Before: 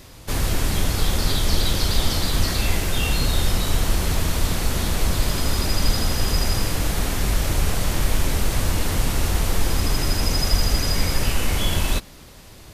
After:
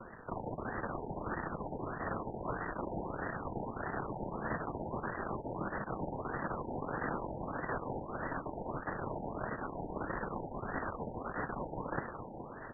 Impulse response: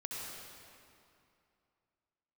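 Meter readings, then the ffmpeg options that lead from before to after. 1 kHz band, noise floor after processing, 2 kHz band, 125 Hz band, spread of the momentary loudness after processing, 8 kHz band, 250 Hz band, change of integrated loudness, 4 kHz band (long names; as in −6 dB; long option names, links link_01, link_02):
−7.0 dB, −47 dBFS, −12.5 dB, −20.5 dB, 3 LU, below −40 dB, −12.0 dB, −17.0 dB, below −40 dB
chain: -af "areverse,acompressor=threshold=-25dB:ratio=16,areverse,aeval=exprs='max(val(0),0)':channel_layout=same,highpass=230,afreqshift=-50,aecho=1:1:421|842|1263|1684|2105|2526|2947:0.447|0.25|0.14|0.0784|0.0439|0.0246|0.0138,flanger=delay=5.4:depth=4:regen=-56:speed=0.69:shape=triangular,aexciter=amount=15.6:drive=6:freq=5100,acrusher=bits=2:mode=log:mix=0:aa=0.000001,afftfilt=real='re*lt(b*sr/1024,930*pow(2000/930,0.5+0.5*sin(2*PI*1.6*pts/sr)))':imag='im*lt(b*sr/1024,930*pow(2000/930,0.5+0.5*sin(2*PI*1.6*pts/sr)))':win_size=1024:overlap=0.75,volume=5.5dB"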